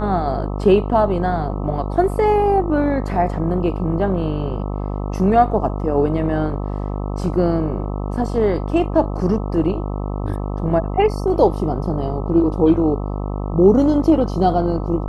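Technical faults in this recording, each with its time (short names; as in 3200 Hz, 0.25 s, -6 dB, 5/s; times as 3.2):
buzz 50 Hz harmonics 26 -24 dBFS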